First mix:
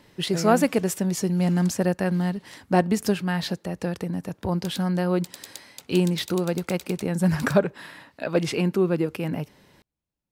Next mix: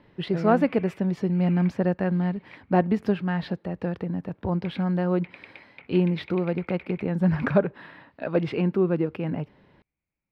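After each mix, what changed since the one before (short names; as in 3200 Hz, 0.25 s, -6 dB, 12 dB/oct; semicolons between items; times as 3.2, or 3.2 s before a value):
background: add synth low-pass 2300 Hz, resonance Q 9.1; master: add air absorption 390 m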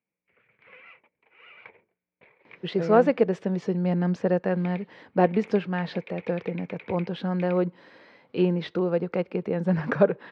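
speech: entry +2.45 s; master: add speaker cabinet 170–8000 Hz, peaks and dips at 270 Hz -3 dB, 480 Hz +7 dB, 6200 Hz +4 dB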